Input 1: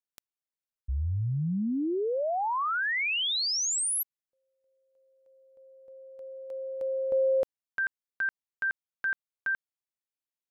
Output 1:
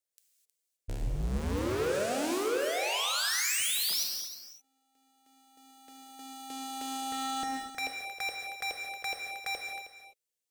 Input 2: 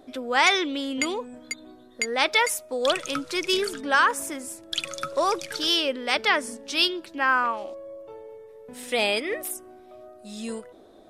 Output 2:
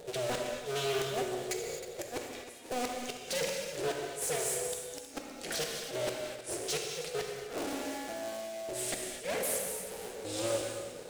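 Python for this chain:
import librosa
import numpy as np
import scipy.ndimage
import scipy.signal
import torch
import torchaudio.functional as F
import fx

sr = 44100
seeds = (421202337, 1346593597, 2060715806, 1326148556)

y = fx.cycle_switch(x, sr, every=2, mode='inverted')
y = fx.high_shelf(y, sr, hz=4300.0, db=2.5)
y = fx.gate_flip(y, sr, shuts_db=-15.0, range_db=-33)
y = 10.0 ** (-23.5 / 20.0) * (np.abs((y / 10.0 ** (-23.5 / 20.0) + 3.0) % 4.0 - 2.0) - 1.0)
y = fx.graphic_eq(y, sr, hz=(125, 250, 500, 1000, 8000), db=(-5, -4, 10, -11, 5))
y = np.clip(10.0 ** (31.5 / 20.0) * y, -1.0, 1.0) / 10.0 ** (31.5 / 20.0)
y = y + 10.0 ** (-12.5 / 20.0) * np.pad(y, (int(315 * sr / 1000.0), 0))[:len(y)]
y = fx.rev_gated(y, sr, seeds[0], gate_ms=280, shape='flat', drr_db=1.0)
y = fx.doppler_dist(y, sr, depth_ms=0.18)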